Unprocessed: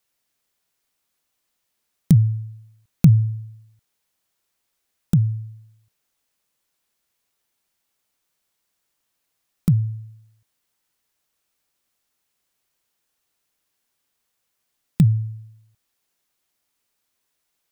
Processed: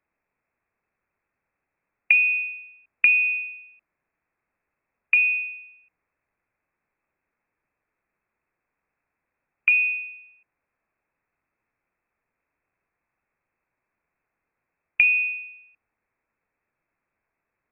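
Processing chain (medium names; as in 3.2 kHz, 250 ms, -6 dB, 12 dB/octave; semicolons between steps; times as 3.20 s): compression 4:1, threshold -19 dBFS, peak gain reduction 10 dB; frequency inversion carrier 2.6 kHz; trim +2.5 dB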